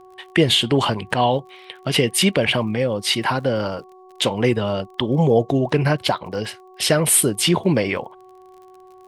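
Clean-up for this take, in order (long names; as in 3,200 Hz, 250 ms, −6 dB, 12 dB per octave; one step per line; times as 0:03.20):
click removal
hum removal 371.7 Hz, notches 3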